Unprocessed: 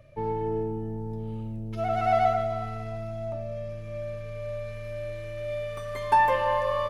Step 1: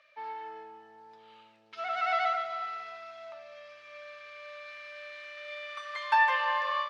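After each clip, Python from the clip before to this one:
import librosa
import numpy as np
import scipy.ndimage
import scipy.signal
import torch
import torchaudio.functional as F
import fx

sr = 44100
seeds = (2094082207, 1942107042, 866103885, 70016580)

y = scipy.signal.sosfilt(scipy.signal.cheby1(2, 1.0, [1300.0, 4500.0], 'bandpass', fs=sr, output='sos'), x)
y = fx.end_taper(y, sr, db_per_s=120.0)
y = y * librosa.db_to_amplitude(4.5)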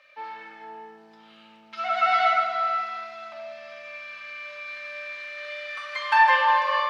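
y = fx.room_shoebox(x, sr, seeds[0], volume_m3=1700.0, walls='mixed', distance_m=2.1)
y = y * librosa.db_to_amplitude(4.5)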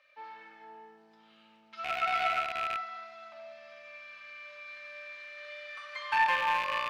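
y = fx.rattle_buzz(x, sr, strikes_db=-51.0, level_db=-14.0)
y = y * librosa.db_to_amplitude(-9.0)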